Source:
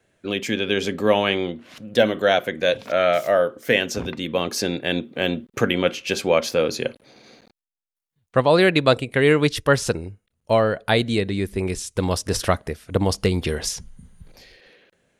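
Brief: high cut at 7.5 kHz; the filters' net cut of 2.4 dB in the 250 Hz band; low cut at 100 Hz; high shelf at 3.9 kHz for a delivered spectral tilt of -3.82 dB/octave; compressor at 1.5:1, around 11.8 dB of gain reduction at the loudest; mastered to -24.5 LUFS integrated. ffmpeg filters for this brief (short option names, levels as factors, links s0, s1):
-af "highpass=100,lowpass=7500,equalizer=f=250:t=o:g=-3,highshelf=f=3900:g=-7,acompressor=threshold=0.00447:ratio=1.5,volume=2.82"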